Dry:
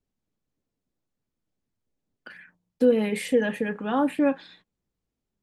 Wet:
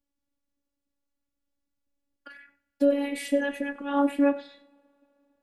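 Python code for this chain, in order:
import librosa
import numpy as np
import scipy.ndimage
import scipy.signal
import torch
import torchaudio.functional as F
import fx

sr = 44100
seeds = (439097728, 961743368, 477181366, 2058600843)

p1 = fx.rev_double_slope(x, sr, seeds[0], early_s=0.5, late_s=3.5, knee_db=-22, drr_db=16.5)
p2 = fx.robotise(p1, sr, hz=283.0)
y = p2 + fx.echo_single(p2, sr, ms=97, db=-18.5, dry=0)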